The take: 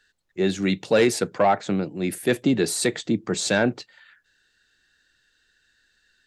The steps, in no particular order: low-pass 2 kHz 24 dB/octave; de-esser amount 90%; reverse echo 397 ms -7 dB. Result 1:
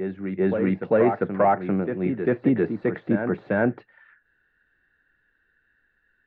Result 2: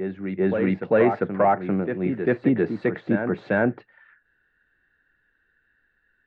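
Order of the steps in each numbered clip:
de-esser > low-pass > reverse echo; low-pass > de-esser > reverse echo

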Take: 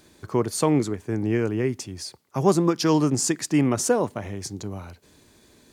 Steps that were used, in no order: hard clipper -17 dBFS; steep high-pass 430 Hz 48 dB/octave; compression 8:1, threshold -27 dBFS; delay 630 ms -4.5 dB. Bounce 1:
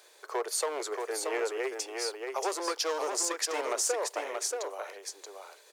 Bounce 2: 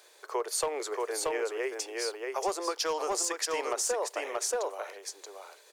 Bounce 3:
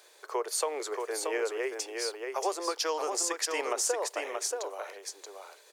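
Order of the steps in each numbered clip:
hard clipper > steep high-pass > compression > delay; steep high-pass > hard clipper > delay > compression; steep high-pass > compression > hard clipper > delay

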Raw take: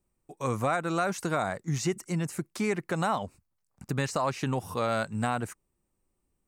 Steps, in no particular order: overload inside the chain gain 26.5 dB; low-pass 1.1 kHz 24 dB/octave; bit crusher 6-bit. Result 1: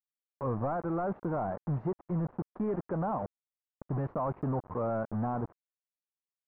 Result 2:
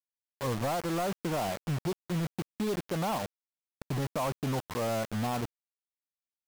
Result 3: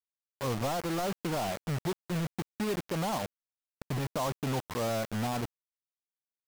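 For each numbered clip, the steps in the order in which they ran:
bit crusher > overload inside the chain > low-pass; low-pass > bit crusher > overload inside the chain; overload inside the chain > low-pass > bit crusher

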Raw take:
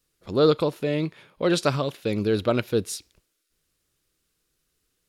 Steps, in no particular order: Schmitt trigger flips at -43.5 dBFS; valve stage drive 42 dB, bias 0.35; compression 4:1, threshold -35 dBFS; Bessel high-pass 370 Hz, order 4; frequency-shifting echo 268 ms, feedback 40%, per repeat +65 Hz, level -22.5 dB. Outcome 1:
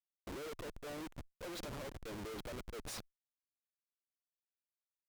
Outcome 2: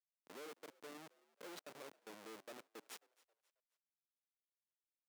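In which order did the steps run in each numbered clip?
Bessel high-pass > compression > frequency-shifting echo > Schmitt trigger > valve stage; compression > valve stage > Schmitt trigger > Bessel high-pass > frequency-shifting echo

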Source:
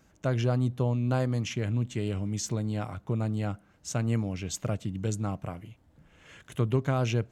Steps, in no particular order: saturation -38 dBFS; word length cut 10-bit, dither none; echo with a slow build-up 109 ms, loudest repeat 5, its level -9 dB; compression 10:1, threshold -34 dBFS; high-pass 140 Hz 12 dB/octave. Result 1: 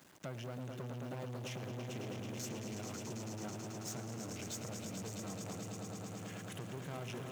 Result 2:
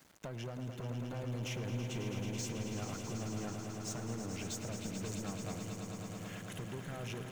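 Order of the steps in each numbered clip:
compression > word length cut > echo with a slow build-up > saturation > high-pass; high-pass > word length cut > compression > saturation > echo with a slow build-up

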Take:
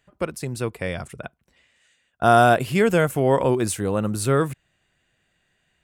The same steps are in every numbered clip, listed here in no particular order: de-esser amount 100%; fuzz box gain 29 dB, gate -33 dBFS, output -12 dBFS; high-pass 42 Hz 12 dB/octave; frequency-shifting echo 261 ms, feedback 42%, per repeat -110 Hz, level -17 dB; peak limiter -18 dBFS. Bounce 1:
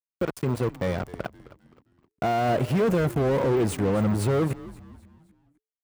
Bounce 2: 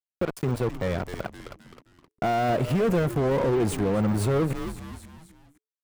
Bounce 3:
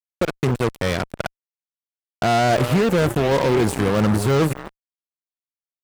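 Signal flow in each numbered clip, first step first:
fuzz box > de-esser > peak limiter > frequency-shifting echo > high-pass; high-pass > fuzz box > frequency-shifting echo > de-esser > peak limiter; de-esser > frequency-shifting echo > high-pass > peak limiter > fuzz box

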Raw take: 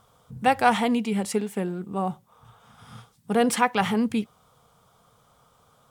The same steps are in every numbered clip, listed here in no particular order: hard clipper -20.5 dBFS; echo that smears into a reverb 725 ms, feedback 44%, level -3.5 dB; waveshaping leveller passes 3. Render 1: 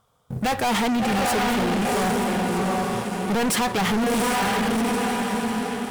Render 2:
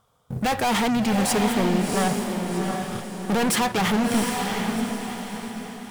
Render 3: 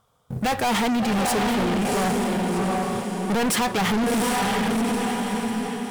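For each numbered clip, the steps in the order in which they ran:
echo that smears into a reverb > waveshaping leveller > hard clipper; waveshaping leveller > hard clipper > echo that smears into a reverb; waveshaping leveller > echo that smears into a reverb > hard clipper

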